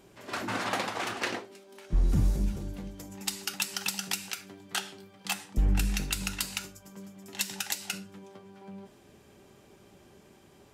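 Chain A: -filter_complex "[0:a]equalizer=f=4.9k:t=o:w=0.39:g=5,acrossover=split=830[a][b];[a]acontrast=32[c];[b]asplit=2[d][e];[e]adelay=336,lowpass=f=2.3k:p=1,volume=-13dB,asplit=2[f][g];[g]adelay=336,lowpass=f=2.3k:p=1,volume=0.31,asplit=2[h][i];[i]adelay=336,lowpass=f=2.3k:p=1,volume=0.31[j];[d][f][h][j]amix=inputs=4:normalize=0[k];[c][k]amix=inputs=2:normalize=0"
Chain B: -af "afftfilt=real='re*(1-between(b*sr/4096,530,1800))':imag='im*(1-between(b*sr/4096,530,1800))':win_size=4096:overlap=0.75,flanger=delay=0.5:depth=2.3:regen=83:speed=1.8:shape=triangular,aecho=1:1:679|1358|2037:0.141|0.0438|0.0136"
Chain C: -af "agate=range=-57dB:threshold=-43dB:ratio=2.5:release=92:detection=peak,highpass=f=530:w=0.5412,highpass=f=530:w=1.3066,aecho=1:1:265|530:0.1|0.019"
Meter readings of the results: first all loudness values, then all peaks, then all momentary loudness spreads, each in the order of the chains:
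-29.0, -37.5, -34.5 LUFS; -10.5, -17.5, -13.0 dBFS; 19, 18, 18 LU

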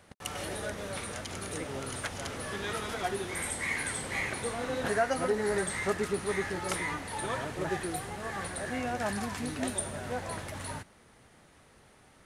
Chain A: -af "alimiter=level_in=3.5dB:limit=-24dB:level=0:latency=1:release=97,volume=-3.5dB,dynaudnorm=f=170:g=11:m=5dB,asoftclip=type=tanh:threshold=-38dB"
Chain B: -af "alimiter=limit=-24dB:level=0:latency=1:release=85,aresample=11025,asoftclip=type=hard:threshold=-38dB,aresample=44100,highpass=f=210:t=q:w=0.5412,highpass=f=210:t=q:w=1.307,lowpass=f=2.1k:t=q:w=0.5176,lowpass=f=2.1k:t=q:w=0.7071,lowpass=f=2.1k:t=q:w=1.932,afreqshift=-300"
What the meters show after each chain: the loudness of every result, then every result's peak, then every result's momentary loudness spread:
-39.5, -43.0 LUFS; -38.0, -30.0 dBFS; 7, 7 LU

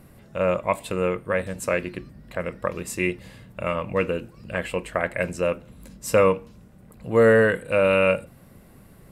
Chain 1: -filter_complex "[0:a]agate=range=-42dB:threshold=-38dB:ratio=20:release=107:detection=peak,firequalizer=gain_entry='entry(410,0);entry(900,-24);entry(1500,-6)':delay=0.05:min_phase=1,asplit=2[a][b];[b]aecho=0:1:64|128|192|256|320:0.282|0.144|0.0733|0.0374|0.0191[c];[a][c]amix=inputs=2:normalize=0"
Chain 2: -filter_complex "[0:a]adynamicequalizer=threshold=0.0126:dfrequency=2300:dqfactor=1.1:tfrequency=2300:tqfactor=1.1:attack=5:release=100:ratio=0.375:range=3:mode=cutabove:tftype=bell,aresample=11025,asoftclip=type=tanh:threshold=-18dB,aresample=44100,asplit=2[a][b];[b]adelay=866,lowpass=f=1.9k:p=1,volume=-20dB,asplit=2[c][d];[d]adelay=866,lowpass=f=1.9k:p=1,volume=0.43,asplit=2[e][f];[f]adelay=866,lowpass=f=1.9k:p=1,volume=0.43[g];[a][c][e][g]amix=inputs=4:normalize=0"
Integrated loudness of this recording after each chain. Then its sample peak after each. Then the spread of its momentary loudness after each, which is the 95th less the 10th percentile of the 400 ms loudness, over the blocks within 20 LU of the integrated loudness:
-27.5, -27.5 LUFS; -9.5, -17.0 dBFS; 16, 19 LU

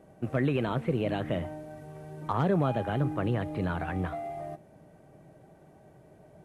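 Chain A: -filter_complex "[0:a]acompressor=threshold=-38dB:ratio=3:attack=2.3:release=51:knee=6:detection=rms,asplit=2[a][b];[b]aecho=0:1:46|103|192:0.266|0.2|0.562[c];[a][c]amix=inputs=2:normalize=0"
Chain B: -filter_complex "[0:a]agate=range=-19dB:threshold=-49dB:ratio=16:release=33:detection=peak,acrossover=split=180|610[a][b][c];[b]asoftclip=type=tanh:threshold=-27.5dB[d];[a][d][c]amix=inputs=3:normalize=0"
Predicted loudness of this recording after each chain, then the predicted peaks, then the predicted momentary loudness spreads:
-39.5, -31.5 LUFS; -25.5, -15.0 dBFS; 17, 15 LU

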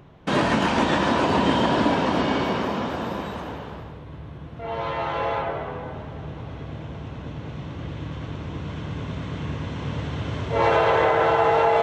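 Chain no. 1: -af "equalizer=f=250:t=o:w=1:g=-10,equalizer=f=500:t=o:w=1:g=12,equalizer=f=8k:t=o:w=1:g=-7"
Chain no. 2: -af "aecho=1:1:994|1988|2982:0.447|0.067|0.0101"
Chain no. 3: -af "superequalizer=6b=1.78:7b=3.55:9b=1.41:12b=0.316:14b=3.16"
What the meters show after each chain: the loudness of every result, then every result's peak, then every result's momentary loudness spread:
-18.5, -24.0, -18.0 LUFS; -2.0, -7.5, -2.5 dBFS; 21, 16, 20 LU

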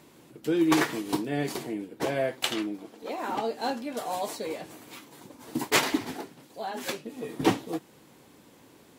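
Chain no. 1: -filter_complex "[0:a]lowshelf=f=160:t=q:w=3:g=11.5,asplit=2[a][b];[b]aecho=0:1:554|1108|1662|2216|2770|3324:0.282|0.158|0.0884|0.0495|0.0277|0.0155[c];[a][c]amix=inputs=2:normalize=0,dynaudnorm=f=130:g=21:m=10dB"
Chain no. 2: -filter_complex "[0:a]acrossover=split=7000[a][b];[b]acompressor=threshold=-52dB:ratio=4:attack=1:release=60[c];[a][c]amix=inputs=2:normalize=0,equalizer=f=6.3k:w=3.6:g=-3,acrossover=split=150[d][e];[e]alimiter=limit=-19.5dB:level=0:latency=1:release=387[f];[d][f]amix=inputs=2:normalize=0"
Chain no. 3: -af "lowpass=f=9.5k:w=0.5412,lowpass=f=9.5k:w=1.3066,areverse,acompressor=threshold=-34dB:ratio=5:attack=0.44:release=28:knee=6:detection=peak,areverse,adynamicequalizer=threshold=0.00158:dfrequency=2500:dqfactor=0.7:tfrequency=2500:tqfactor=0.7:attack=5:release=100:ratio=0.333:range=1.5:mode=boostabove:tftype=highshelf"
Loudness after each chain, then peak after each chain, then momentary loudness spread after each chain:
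-23.5, -33.5, -39.0 LUFS; -2.0, -18.5, -25.0 dBFS; 15, 13, 15 LU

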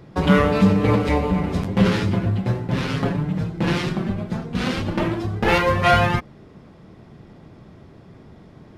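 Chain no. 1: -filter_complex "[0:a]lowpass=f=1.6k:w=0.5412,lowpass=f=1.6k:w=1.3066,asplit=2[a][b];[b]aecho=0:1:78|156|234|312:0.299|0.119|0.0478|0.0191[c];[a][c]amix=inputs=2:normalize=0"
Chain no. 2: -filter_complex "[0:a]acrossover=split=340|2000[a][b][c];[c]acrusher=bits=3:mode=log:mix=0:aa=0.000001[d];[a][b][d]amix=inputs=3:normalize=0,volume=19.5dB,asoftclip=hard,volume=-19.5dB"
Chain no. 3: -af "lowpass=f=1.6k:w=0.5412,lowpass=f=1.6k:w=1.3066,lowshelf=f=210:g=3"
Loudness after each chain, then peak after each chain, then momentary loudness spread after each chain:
-20.5, -24.0, -20.0 LUFS; -3.5, -19.5, -2.5 dBFS; 9, 4, 8 LU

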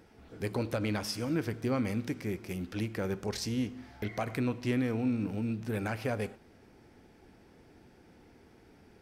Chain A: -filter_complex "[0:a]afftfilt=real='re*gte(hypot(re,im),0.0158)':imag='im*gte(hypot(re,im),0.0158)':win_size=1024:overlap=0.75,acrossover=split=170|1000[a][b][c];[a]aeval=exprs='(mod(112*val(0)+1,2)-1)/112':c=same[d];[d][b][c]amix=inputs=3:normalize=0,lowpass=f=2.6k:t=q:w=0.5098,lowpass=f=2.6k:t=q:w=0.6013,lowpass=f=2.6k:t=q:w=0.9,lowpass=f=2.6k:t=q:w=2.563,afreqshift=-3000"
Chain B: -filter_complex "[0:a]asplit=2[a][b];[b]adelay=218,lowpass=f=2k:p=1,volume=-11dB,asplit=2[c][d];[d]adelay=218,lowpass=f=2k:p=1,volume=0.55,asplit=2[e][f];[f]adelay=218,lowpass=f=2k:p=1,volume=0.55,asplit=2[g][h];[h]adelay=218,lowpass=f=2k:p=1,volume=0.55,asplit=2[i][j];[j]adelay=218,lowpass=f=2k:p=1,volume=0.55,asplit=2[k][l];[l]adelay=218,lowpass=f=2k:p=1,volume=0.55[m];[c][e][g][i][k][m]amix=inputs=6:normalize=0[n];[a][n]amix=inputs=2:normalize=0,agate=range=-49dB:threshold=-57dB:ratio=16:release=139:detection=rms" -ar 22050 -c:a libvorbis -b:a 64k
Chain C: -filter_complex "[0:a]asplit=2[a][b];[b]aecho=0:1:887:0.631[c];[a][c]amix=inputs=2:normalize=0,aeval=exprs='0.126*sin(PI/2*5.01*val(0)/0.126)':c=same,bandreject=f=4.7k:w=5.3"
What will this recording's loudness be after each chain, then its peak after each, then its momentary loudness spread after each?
-32.5, -33.5, -22.5 LUFS; -21.0, -20.5, -14.0 dBFS; 7, 8, 18 LU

